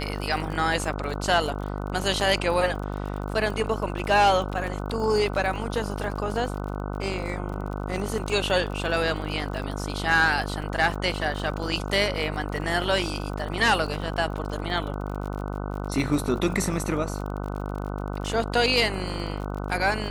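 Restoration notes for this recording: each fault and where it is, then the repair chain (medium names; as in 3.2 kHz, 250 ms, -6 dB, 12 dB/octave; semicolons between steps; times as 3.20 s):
buzz 50 Hz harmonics 30 -31 dBFS
crackle 38 per s -33 dBFS
10.62 s: dropout 2.7 ms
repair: de-click; de-hum 50 Hz, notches 30; interpolate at 10.62 s, 2.7 ms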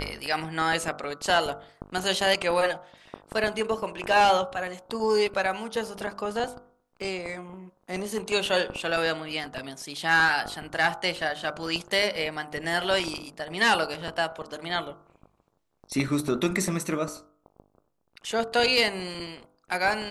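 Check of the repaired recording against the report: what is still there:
nothing left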